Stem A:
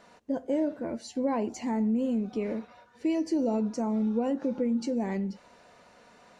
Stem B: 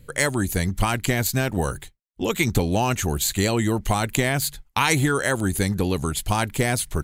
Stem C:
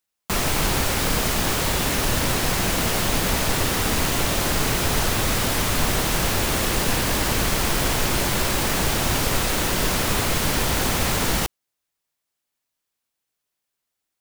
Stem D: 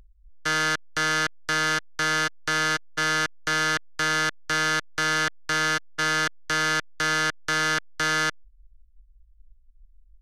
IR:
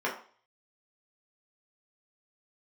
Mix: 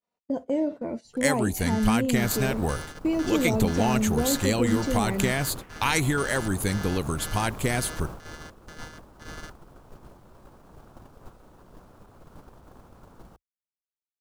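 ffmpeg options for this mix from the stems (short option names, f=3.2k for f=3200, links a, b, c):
-filter_complex "[0:a]agate=range=-33dB:threshold=-44dB:ratio=3:detection=peak,equalizer=f=1.6k:t=o:w=0.31:g=-7.5,volume=2dB[a];[1:a]adelay=1050,volume=-4dB[b];[2:a]alimiter=limit=-13.5dB:level=0:latency=1:release=40,afwtdn=0.0501,adelay=1900,volume=-12dB[c];[3:a]highshelf=f=6.5k:g=7.5,adelay=1200,volume=-17.5dB[d];[a][b][c][d]amix=inputs=4:normalize=0,agate=range=-14dB:threshold=-34dB:ratio=16:detection=peak"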